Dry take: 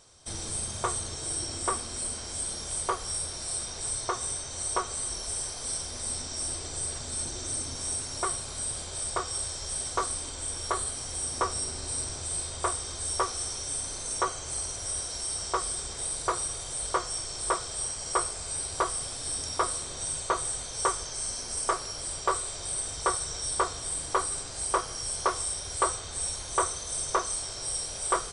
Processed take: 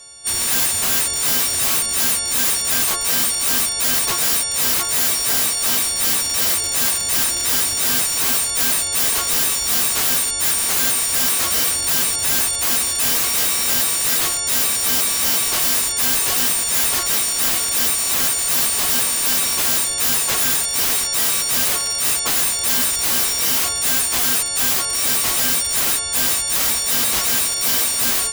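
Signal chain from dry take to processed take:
every partial snapped to a pitch grid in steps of 4 semitones
wrap-around overflow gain 19.5 dB
level +6 dB

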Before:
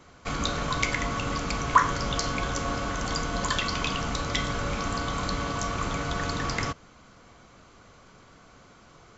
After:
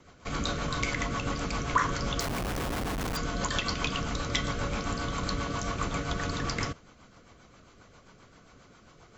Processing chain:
rotating-speaker cabinet horn 7.5 Hz
0:02.20–0:03.17: comparator with hysteresis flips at −35.5 dBFS

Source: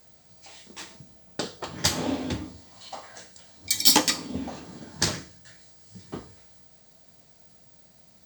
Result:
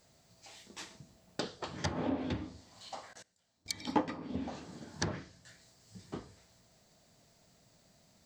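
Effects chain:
0:03.13–0:03.69: output level in coarse steps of 23 dB
treble cut that deepens with the level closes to 1,100 Hz, closed at −21.5 dBFS
level −5.5 dB

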